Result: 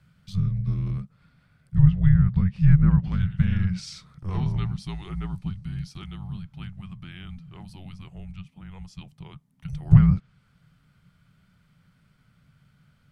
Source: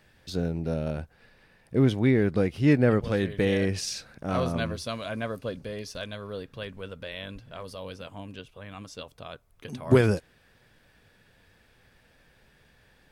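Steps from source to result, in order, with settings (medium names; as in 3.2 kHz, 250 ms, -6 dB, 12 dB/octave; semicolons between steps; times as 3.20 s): frequency shift -280 Hz; low-pass that closes with the level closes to 2.2 kHz, closed at -17 dBFS; resonant low shelf 200 Hz +8.5 dB, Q 3; trim -6.5 dB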